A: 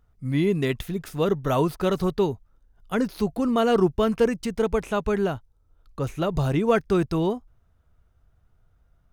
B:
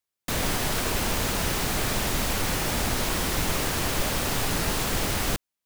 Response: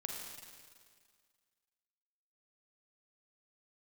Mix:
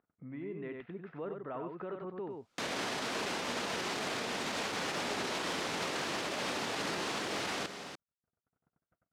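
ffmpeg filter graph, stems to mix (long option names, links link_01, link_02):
-filter_complex "[0:a]agate=range=-53dB:threshold=-54dB:ratio=16:detection=peak,alimiter=limit=-18.5dB:level=0:latency=1:release=32,lowpass=frequency=2200:width=0.5412,lowpass=frequency=2200:width=1.3066,volume=-13.5dB,asplit=2[link_01][link_02];[link_02]volume=-5dB[link_03];[1:a]alimiter=limit=-21.5dB:level=0:latency=1,adelay=2300,volume=2.5dB,asplit=2[link_04][link_05];[link_05]volume=-4dB[link_06];[2:a]atrim=start_sample=2205[link_07];[link_06][link_07]afir=irnorm=-1:irlink=0[link_08];[link_03]aecho=0:1:94:1[link_09];[link_01][link_04][link_08][link_09]amix=inputs=4:normalize=0,acompressor=mode=upward:threshold=-34dB:ratio=2.5,highpass=250,lowpass=5400,alimiter=level_in=2.5dB:limit=-24dB:level=0:latency=1:release=209,volume=-2.5dB"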